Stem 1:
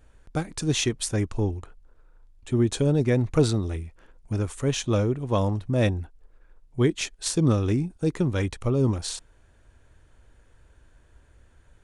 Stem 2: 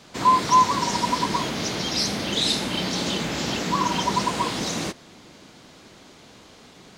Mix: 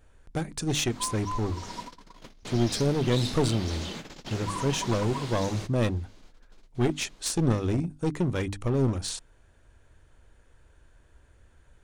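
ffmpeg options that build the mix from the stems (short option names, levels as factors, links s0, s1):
-filter_complex "[0:a]bandreject=f=50:t=h:w=6,bandreject=f=100:t=h:w=6,bandreject=f=150:t=h:w=6,bandreject=f=200:t=h:w=6,bandreject=f=250:t=h:w=6,bandreject=f=300:t=h:w=6,volume=0.891,asplit=2[s0][s1];[1:a]adelay=750,volume=0.282,afade=t=in:st=1.53:d=0.53:silence=0.398107[s2];[s1]apad=whole_len=340483[s3];[s2][s3]sidechaingate=range=0.0224:threshold=0.00316:ratio=16:detection=peak[s4];[s0][s4]amix=inputs=2:normalize=0,aeval=exprs='clip(val(0),-1,0.0531)':c=same"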